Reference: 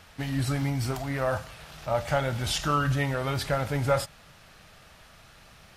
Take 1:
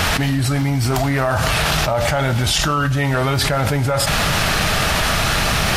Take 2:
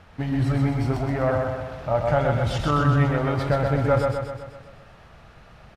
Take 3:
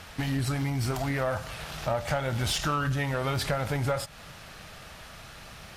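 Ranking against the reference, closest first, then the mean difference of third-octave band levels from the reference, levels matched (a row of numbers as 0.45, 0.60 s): 3, 2, 1; 4.5, 7.0, 10.5 dB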